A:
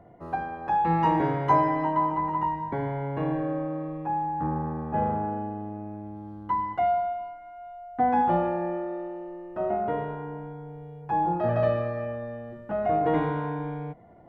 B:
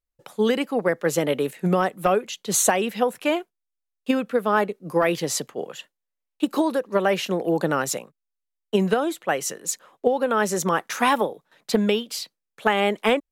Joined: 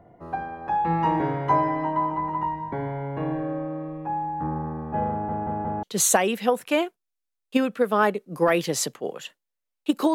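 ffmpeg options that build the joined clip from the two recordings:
-filter_complex "[0:a]apad=whole_dur=10.14,atrim=end=10.14,asplit=4[a][b][c][d];[a]atrim=end=5.292[e];[b]atrim=start=5.108:end=5.292[f];[c]atrim=start=5.108:end=5.292[g];[d]atrim=start=5.108:end=5.292[h];[1:a]atrim=start=2.368:end=6.68[i];[e][f]acrossfade=d=0.004:c1=hsin:c2=hsin[j];[j][g]acrossfade=d=0.004:c1=hsin:c2=hsin[k];[k][h]acrossfade=d=0.004:c1=hsin:c2=hsin[l];[l][i]acrossfade=d=0.004:c1=hsin:c2=hsin"

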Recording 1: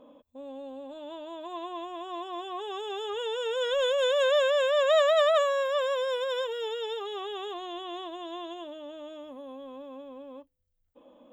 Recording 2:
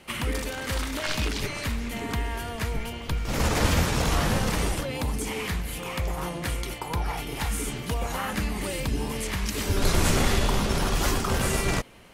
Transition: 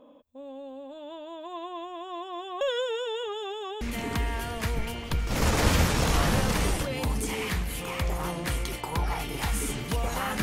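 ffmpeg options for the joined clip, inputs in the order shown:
-filter_complex "[0:a]apad=whole_dur=10.42,atrim=end=10.42,asplit=2[a][b];[a]atrim=end=2.612[c];[b]atrim=start=2.608:end=3.812,asetpts=PTS-STARTPTS,areverse[d];[1:a]atrim=start=1.788:end=8.4[e];[c][d]acrossfade=d=0.004:c1=hsin:c2=hsin[f];[f][e]acrossfade=d=0.004:c1=hsin:c2=hsin"

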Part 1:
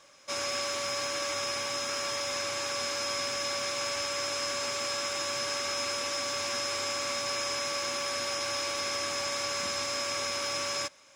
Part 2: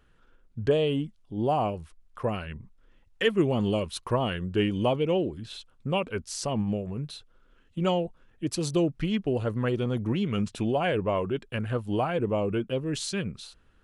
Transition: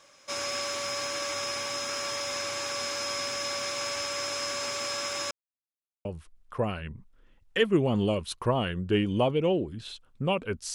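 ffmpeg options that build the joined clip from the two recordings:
-filter_complex "[0:a]apad=whole_dur=10.74,atrim=end=10.74,asplit=2[a][b];[a]atrim=end=5.31,asetpts=PTS-STARTPTS,afade=t=out:st=5.306:d=0.004:c=hsin[c];[b]atrim=start=5.31:end=6.05,asetpts=PTS-STARTPTS,volume=0[d];[1:a]atrim=start=1.7:end=6.39,asetpts=PTS-STARTPTS,afade=t=in:d=0.004:c=hsin[e];[c][d][e]concat=n=3:v=0:a=1"

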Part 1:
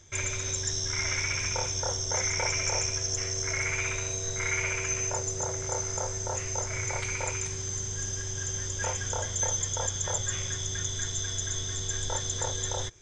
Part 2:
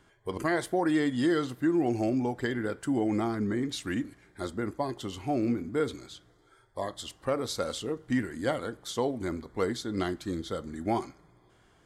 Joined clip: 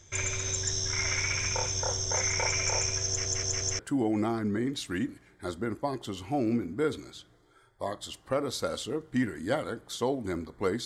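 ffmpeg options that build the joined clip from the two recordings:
-filter_complex "[0:a]apad=whole_dur=10.85,atrim=end=10.85,asplit=4[a][b][c][d];[a]atrim=end=3.252[e];[b]atrim=start=3.068:end=3.252[f];[c]atrim=start=3.068:end=3.252[g];[d]atrim=start=3.068:end=3.252[h];[1:a]atrim=start=2.748:end=9.81[i];[e][f]acrossfade=d=0.004:c1=hsin:c2=hsin[j];[j][g]acrossfade=d=0.004:c1=hsin:c2=hsin[k];[k][h]acrossfade=d=0.004:c1=hsin:c2=hsin[l];[l][i]acrossfade=d=0.004:c1=hsin:c2=hsin"

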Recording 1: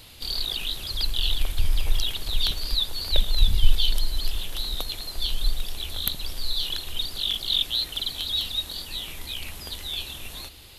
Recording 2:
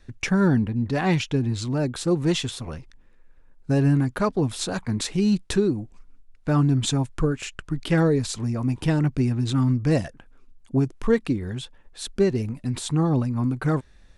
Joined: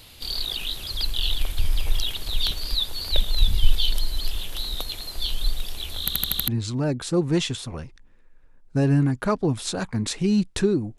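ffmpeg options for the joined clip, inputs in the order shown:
-filter_complex "[0:a]apad=whole_dur=10.98,atrim=end=10.98,asplit=6[a][b][c][d][e][f];[a]atrim=end=6.082[g];[b]atrim=start=5.998:end=6.082[h];[c]atrim=start=5.998:end=6.082[i];[d]atrim=start=5.998:end=6.082[j];[e]atrim=start=5.998:end=6.082[k];[f]atrim=start=5.998:end=6.082[l];[1:a]atrim=start=1.418:end=5.92[m];[g][h]acrossfade=d=0.004:c1=hsin:c2=hsin[n];[n][i]acrossfade=d=0.004:c1=hsin:c2=hsin[o];[o][j]acrossfade=d=0.004:c1=hsin:c2=hsin[p];[p][k]acrossfade=d=0.004:c1=hsin:c2=hsin[q];[q][l]acrossfade=d=0.004:c1=hsin:c2=hsin[r];[r][m]acrossfade=d=0.004:c1=hsin:c2=hsin"

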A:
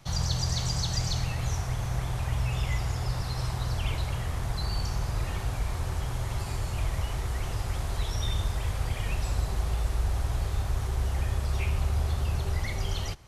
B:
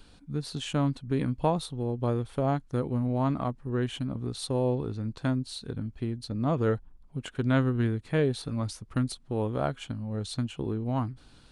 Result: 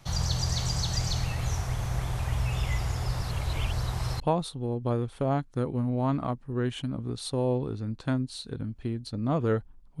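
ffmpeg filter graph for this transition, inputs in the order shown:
-filter_complex "[0:a]apad=whole_dur=10,atrim=end=10,asplit=2[a][b];[a]atrim=end=3.312[c];[b]atrim=start=3.308:end=4.202,asetpts=PTS-STARTPTS,areverse[d];[1:a]atrim=start=1.368:end=7.17[e];[c][d]acrossfade=d=0.004:c1=hsin:c2=hsin[f];[f][e]acrossfade=d=0.004:c1=hsin:c2=hsin"

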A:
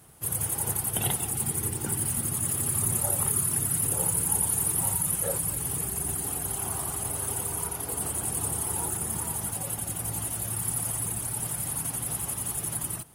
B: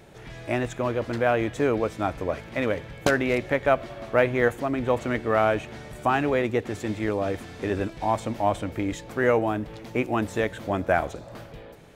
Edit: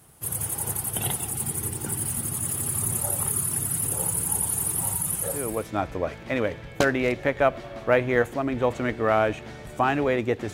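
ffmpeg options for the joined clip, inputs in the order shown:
-filter_complex "[0:a]apad=whole_dur=10.53,atrim=end=10.53,atrim=end=5.71,asetpts=PTS-STARTPTS[a];[1:a]atrim=start=1.53:end=6.79,asetpts=PTS-STARTPTS[b];[a][b]acrossfade=d=0.44:c1=tri:c2=tri"

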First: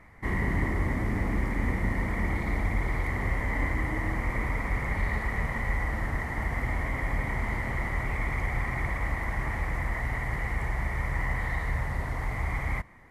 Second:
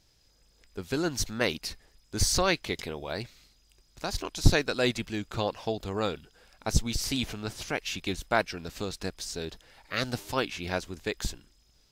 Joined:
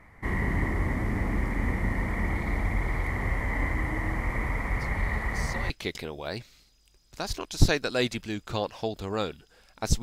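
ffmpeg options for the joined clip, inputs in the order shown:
-filter_complex "[1:a]asplit=2[a][b];[0:a]apad=whole_dur=10.02,atrim=end=10.02,atrim=end=5.702[c];[b]atrim=start=2.538:end=6.86[d];[a]atrim=start=1.6:end=2.54,asetpts=PTS-STARTPTS,volume=-16dB,afade=t=in:d=0.004:c=hsin,afade=t=out:st=0.936:d=0.004:c=hsin,adelay=4760[e];[c][d]acrossfade=d=0.004:c1=hsin:c2=hsin[f];[f][e]amix=inputs=2:normalize=0"

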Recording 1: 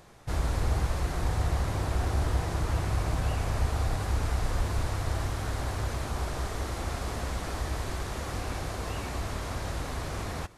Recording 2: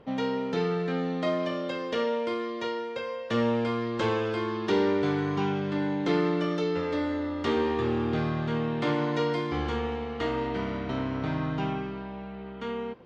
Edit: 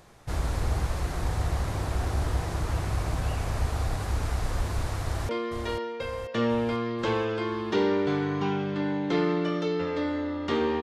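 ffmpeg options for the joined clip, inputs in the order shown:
-filter_complex "[0:a]apad=whole_dur=10.82,atrim=end=10.82,atrim=end=5.292[a];[1:a]atrim=start=2.248:end=7.78[b];[a][b]acrossfade=d=0.004:c1=hsin:c2=hsin,asplit=2[c][d];[d]afade=t=in:st=5.02:d=0.01,afade=t=out:st=5.29:d=0.01,aecho=0:1:490|980|1470|1960|2450|2940|3430|3920:0.446684|0.26801|0.160806|0.0964837|0.0578902|0.0347341|0.0208405|0.0125043[e];[c][e]amix=inputs=2:normalize=0"

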